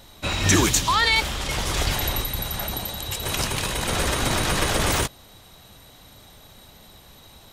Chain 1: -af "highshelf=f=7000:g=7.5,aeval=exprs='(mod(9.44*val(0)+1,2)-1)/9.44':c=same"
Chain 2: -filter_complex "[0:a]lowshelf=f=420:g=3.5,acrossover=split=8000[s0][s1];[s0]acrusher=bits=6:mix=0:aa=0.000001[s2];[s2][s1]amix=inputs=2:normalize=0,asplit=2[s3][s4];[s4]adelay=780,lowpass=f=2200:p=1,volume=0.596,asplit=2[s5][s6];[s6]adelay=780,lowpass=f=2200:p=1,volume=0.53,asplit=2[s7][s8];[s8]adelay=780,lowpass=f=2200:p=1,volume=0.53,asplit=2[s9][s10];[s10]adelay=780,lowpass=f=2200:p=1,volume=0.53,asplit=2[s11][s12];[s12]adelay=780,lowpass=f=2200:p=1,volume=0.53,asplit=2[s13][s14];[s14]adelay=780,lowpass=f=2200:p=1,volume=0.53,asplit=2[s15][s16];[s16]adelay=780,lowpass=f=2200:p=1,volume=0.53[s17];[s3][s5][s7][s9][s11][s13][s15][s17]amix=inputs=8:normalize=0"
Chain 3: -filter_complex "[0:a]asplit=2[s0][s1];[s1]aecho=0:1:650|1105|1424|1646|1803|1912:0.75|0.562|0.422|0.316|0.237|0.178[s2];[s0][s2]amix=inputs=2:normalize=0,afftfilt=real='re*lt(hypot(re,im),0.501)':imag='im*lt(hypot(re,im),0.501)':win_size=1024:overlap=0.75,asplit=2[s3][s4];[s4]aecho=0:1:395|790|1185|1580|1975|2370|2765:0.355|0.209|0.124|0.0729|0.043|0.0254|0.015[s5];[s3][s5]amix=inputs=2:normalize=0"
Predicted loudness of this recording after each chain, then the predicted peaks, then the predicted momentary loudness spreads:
-23.0 LUFS, -21.5 LUFS, -20.5 LUFS; -19.5 dBFS, -4.0 dBFS, -7.0 dBFS; 4 LU, 16 LU, 9 LU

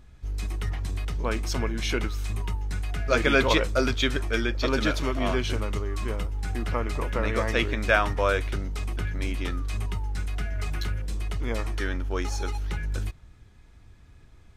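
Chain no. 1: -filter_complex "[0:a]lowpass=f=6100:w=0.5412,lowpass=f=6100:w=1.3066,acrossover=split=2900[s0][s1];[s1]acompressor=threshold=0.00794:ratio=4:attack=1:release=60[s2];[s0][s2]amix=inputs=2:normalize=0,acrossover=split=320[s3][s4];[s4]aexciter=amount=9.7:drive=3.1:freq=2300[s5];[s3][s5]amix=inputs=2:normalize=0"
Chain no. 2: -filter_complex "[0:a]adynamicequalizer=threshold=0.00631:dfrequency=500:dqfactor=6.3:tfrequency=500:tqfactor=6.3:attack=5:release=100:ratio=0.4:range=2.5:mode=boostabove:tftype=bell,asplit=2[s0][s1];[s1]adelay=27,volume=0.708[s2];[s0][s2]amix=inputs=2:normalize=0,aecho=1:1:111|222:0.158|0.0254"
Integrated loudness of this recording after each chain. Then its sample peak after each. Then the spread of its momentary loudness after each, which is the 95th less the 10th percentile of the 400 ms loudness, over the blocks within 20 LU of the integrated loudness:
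-22.5 LUFS, -26.5 LUFS; -1.5 dBFS, -4.0 dBFS; 11 LU, 13 LU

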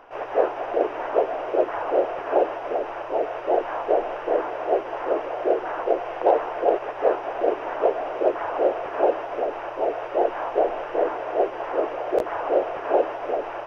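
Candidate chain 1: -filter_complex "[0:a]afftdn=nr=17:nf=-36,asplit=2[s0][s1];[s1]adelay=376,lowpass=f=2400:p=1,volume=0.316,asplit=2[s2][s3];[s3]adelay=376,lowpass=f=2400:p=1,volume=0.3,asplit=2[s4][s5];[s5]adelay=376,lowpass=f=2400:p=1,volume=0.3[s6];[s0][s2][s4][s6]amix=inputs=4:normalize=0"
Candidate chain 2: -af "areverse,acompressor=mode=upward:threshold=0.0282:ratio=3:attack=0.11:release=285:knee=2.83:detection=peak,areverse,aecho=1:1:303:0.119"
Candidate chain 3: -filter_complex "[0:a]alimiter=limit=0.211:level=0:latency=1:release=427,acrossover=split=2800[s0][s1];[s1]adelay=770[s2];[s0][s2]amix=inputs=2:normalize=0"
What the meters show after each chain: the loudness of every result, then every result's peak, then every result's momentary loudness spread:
-24.5 LUFS, -24.5 LUFS, -28.0 LUFS; -6.0 dBFS, -6.5 dBFS, -13.5 dBFS; 4 LU, 4 LU, 2 LU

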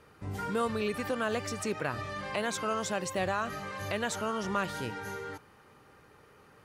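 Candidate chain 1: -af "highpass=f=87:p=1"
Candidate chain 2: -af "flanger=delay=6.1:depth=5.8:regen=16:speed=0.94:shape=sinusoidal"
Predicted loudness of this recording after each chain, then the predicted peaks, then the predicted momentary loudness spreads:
-33.5 LUFS, -37.0 LUFS; -19.0 dBFS, -21.0 dBFS; 7 LU, 7 LU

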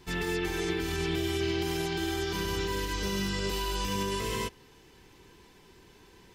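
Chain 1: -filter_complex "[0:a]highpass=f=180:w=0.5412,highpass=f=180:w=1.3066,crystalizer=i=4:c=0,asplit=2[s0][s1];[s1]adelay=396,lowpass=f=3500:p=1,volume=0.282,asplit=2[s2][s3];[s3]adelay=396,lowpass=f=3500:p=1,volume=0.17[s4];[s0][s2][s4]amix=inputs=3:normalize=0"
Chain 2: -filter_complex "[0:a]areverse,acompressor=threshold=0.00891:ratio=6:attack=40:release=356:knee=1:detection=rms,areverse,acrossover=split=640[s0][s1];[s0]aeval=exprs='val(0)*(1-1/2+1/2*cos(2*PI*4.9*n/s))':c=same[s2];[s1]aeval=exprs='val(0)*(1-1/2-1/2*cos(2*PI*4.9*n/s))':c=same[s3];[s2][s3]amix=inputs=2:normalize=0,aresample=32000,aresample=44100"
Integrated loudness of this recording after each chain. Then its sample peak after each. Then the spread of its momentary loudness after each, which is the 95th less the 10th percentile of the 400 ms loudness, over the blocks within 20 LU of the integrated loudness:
-25.5 LUFS, -47.0 LUFS; -12.5 dBFS, -34.0 dBFS; 4 LU, 14 LU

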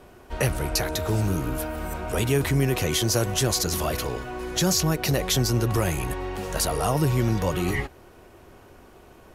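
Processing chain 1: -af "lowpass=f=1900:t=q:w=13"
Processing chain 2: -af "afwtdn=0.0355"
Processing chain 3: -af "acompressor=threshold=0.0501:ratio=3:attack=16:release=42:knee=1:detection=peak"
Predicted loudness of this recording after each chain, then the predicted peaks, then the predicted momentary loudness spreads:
-20.5 LUFS, -26.0 LUFS, -27.0 LUFS; -1.5 dBFS, -10.5 dBFS, -11.0 dBFS; 10 LU, 9 LU, 6 LU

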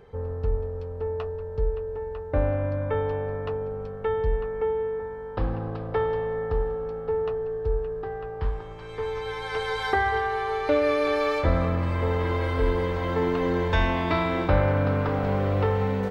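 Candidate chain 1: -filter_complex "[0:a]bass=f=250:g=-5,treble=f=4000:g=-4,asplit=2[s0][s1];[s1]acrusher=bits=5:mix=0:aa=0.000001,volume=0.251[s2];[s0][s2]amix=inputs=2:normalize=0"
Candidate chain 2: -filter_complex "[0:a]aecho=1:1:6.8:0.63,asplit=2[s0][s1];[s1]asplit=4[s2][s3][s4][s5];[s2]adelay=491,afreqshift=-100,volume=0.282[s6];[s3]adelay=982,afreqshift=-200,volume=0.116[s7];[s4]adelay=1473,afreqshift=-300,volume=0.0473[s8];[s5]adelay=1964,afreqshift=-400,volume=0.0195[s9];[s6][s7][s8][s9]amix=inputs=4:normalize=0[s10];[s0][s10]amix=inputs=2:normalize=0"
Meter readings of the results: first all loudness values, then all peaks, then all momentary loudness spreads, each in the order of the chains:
-26.0 LUFS, -24.0 LUFS; -8.0 dBFS, -8.0 dBFS; 9 LU, 8 LU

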